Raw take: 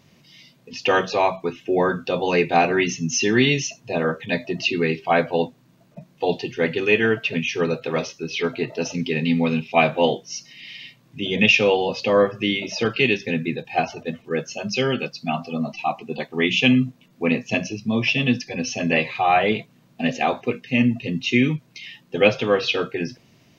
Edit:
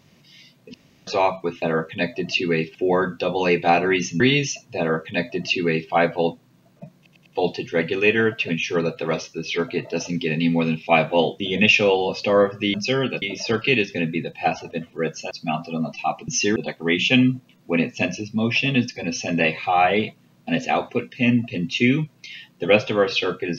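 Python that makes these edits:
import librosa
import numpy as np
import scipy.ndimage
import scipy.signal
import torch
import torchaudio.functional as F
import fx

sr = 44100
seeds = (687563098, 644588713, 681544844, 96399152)

y = fx.edit(x, sr, fx.room_tone_fill(start_s=0.74, length_s=0.33),
    fx.move(start_s=3.07, length_s=0.28, to_s=16.08),
    fx.duplicate(start_s=3.93, length_s=1.13, to_s=1.62),
    fx.stutter(start_s=6.11, slice_s=0.1, count=4),
    fx.cut(start_s=10.25, length_s=0.95),
    fx.move(start_s=14.63, length_s=0.48, to_s=12.54), tone=tone)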